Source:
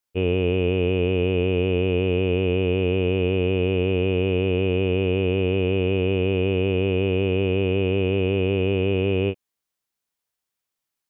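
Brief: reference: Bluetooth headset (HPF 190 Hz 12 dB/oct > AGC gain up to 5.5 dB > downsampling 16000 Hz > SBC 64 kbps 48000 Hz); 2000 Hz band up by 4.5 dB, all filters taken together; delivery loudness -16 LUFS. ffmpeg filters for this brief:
-af "highpass=190,equalizer=f=2k:t=o:g=6.5,dynaudnorm=m=5.5dB,aresample=16000,aresample=44100,volume=7dB" -ar 48000 -c:a sbc -b:a 64k

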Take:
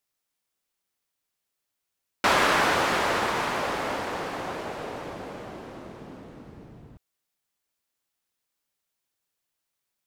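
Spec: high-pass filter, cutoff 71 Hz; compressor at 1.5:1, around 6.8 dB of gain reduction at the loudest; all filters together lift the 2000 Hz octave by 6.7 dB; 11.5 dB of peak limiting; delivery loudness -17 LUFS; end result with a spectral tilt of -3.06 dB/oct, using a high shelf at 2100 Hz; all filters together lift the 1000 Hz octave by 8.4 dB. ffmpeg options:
-af "highpass=71,equalizer=f=1k:t=o:g=8.5,equalizer=f=2k:t=o:g=3.5,highshelf=f=2.1k:g=3.5,acompressor=threshold=-30dB:ratio=1.5,volume=13dB,alimiter=limit=-7dB:level=0:latency=1"

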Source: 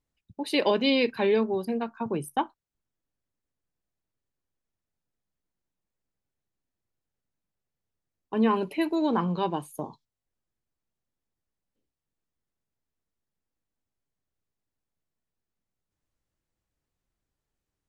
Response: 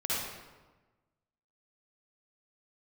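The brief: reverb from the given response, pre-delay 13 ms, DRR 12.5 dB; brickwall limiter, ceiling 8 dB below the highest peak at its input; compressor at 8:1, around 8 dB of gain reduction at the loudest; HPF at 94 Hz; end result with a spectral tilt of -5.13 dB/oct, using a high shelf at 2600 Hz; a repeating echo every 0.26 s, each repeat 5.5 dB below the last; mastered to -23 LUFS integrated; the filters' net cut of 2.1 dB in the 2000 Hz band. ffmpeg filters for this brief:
-filter_complex "[0:a]highpass=94,equalizer=f=2k:t=o:g=-4.5,highshelf=f=2.6k:g=3.5,acompressor=threshold=-27dB:ratio=8,alimiter=level_in=2dB:limit=-24dB:level=0:latency=1,volume=-2dB,aecho=1:1:260|520|780|1040|1300|1560|1820:0.531|0.281|0.149|0.079|0.0419|0.0222|0.0118,asplit=2[a][b];[1:a]atrim=start_sample=2205,adelay=13[c];[b][c]afir=irnorm=-1:irlink=0,volume=-19.5dB[d];[a][d]amix=inputs=2:normalize=0,volume=11.5dB"

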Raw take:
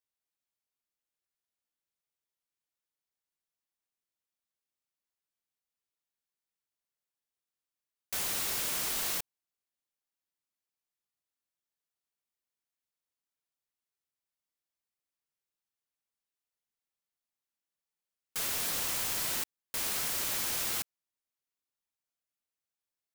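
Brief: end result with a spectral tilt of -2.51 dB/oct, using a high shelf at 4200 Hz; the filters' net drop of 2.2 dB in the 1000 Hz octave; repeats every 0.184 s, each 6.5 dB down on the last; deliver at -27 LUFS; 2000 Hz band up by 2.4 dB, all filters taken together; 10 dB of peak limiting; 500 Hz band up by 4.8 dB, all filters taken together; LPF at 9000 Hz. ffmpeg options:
-af "lowpass=9k,equalizer=f=500:t=o:g=7.5,equalizer=f=1k:t=o:g=-6.5,equalizer=f=2k:t=o:g=6,highshelf=f=4.2k:g=-7.5,alimiter=level_in=11.5dB:limit=-24dB:level=0:latency=1,volume=-11.5dB,aecho=1:1:184|368|552|736|920|1104:0.473|0.222|0.105|0.0491|0.0231|0.0109,volume=16dB"

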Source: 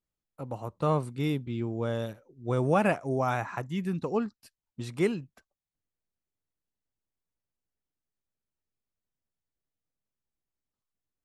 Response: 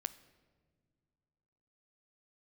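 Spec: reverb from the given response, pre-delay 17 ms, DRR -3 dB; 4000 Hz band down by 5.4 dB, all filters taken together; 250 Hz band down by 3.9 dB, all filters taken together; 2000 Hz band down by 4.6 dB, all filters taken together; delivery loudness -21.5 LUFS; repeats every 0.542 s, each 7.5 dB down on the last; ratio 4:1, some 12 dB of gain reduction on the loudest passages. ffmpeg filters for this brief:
-filter_complex "[0:a]equalizer=f=250:t=o:g=-5.5,equalizer=f=2k:t=o:g=-5,equalizer=f=4k:t=o:g=-5,acompressor=threshold=-37dB:ratio=4,aecho=1:1:542|1084|1626|2168|2710:0.422|0.177|0.0744|0.0312|0.0131,asplit=2[a][b];[1:a]atrim=start_sample=2205,adelay=17[c];[b][c]afir=irnorm=-1:irlink=0,volume=4.5dB[d];[a][d]amix=inputs=2:normalize=0,volume=14.5dB"

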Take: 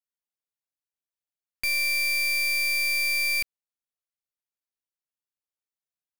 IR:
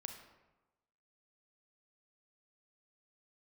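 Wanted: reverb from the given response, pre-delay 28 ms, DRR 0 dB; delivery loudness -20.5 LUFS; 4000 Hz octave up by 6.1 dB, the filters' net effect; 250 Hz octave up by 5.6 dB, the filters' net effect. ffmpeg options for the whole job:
-filter_complex "[0:a]equalizer=f=250:t=o:g=7.5,equalizer=f=4k:t=o:g=7.5,asplit=2[a][b];[1:a]atrim=start_sample=2205,adelay=28[c];[b][c]afir=irnorm=-1:irlink=0,volume=3.5dB[d];[a][d]amix=inputs=2:normalize=0,volume=-2.5dB"

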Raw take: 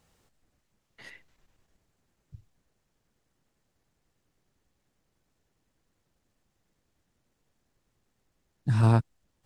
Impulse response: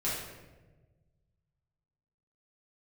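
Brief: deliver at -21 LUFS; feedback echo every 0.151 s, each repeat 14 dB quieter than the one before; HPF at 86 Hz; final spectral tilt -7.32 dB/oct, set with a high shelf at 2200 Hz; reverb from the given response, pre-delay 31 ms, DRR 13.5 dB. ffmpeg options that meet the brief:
-filter_complex "[0:a]highpass=86,highshelf=f=2.2k:g=3,aecho=1:1:151|302:0.2|0.0399,asplit=2[a][b];[1:a]atrim=start_sample=2205,adelay=31[c];[b][c]afir=irnorm=-1:irlink=0,volume=-20dB[d];[a][d]amix=inputs=2:normalize=0,volume=5.5dB"

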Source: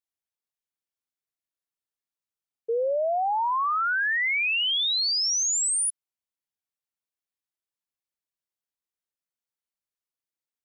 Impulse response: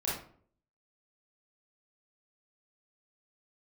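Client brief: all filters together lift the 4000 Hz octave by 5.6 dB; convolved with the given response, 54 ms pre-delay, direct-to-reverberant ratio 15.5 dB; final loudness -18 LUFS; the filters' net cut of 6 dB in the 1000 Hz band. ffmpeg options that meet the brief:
-filter_complex "[0:a]equalizer=f=1k:t=o:g=-8.5,equalizer=f=4k:t=o:g=7.5,asplit=2[a][b];[1:a]atrim=start_sample=2205,adelay=54[c];[b][c]afir=irnorm=-1:irlink=0,volume=-21dB[d];[a][d]amix=inputs=2:normalize=0,volume=2dB"

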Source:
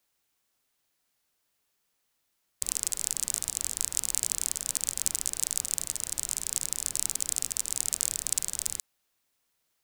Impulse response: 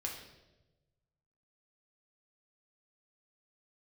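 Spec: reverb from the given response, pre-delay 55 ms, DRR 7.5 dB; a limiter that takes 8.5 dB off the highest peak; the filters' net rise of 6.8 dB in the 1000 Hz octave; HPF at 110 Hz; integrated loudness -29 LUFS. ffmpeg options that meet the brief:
-filter_complex "[0:a]highpass=110,equalizer=f=1k:t=o:g=8.5,alimiter=limit=-11dB:level=0:latency=1,asplit=2[a][b];[1:a]atrim=start_sample=2205,adelay=55[c];[b][c]afir=irnorm=-1:irlink=0,volume=-8dB[d];[a][d]amix=inputs=2:normalize=0,volume=4dB"

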